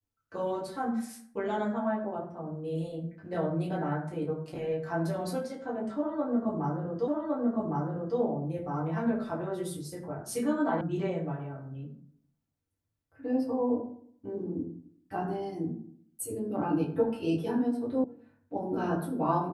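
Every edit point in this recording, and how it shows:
7.08 s: repeat of the last 1.11 s
10.81 s: sound stops dead
18.04 s: sound stops dead

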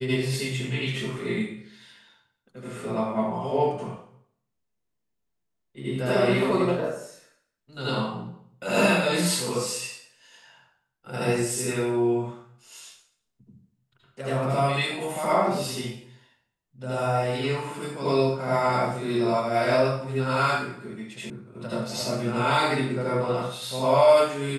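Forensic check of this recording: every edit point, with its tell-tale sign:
21.30 s: sound stops dead

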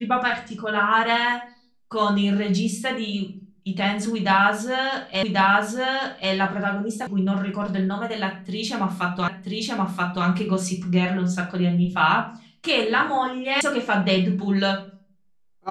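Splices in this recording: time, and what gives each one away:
5.23 s: repeat of the last 1.09 s
7.07 s: sound stops dead
9.28 s: repeat of the last 0.98 s
13.61 s: sound stops dead

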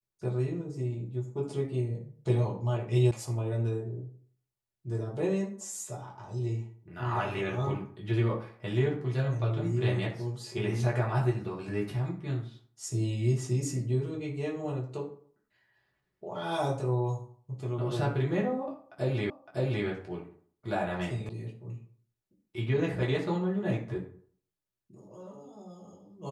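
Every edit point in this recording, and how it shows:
3.11 s: sound stops dead
19.30 s: repeat of the last 0.56 s
21.29 s: sound stops dead

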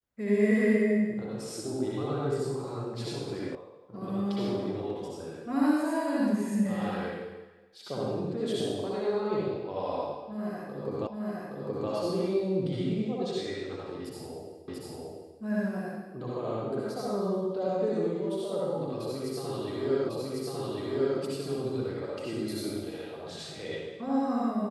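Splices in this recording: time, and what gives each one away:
3.55 s: sound stops dead
11.07 s: repeat of the last 0.82 s
14.68 s: repeat of the last 0.69 s
20.09 s: repeat of the last 1.1 s

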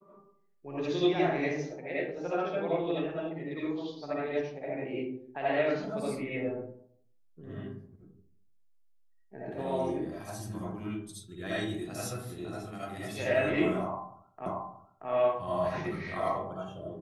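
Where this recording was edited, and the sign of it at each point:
14.46 s: repeat of the last 0.63 s

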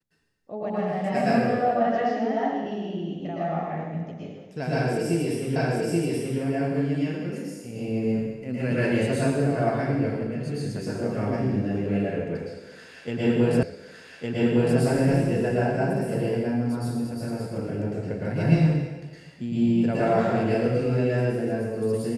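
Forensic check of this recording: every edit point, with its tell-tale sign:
5.56 s: repeat of the last 0.83 s
13.63 s: repeat of the last 1.16 s

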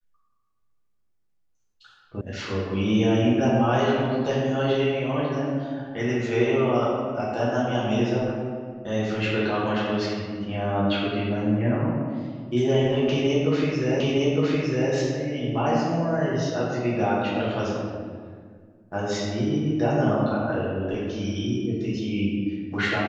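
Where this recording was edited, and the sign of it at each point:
2.21 s: sound stops dead
14.00 s: repeat of the last 0.91 s

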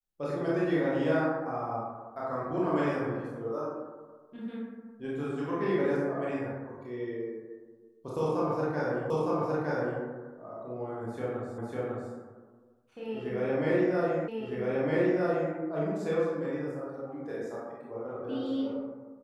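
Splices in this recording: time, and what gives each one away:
9.10 s: repeat of the last 0.91 s
11.58 s: repeat of the last 0.55 s
14.28 s: repeat of the last 1.26 s

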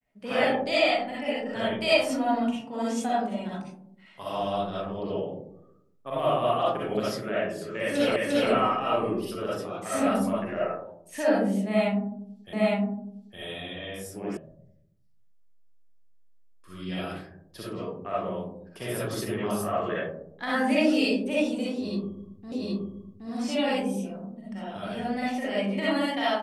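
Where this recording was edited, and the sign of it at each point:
8.16 s: repeat of the last 0.35 s
12.53 s: repeat of the last 0.86 s
14.37 s: sound stops dead
22.52 s: repeat of the last 0.77 s

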